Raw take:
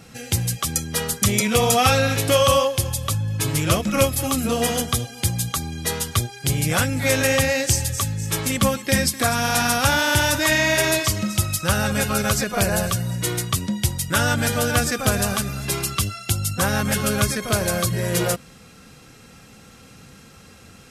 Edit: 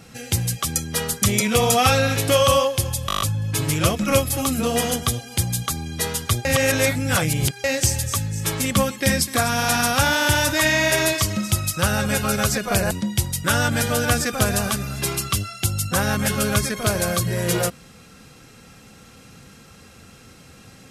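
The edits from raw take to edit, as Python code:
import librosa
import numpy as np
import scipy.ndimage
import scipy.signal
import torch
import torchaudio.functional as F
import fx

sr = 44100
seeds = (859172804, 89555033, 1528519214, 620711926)

y = fx.edit(x, sr, fx.stutter(start_s=3.07, slice_s=0.02, count=8),
    fx.reverse_span(start_s=6.31, length_s=1.19),
    fx.cut(start_s=12.77, length_s=0.8), tone=tone)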